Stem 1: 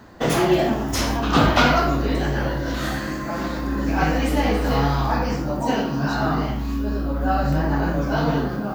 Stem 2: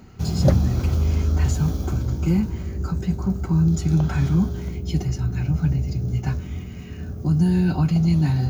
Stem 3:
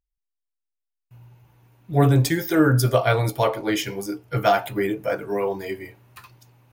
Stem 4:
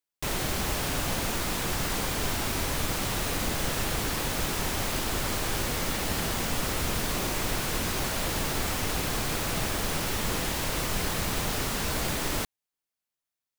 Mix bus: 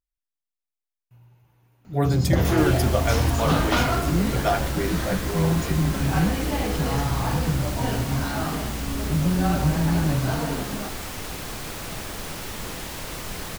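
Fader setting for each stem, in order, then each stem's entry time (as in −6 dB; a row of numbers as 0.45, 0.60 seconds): −6.5, −4.5, −5.0, −4.0 decibels; 2.15, 1.85, 0.00, 2.35 seconds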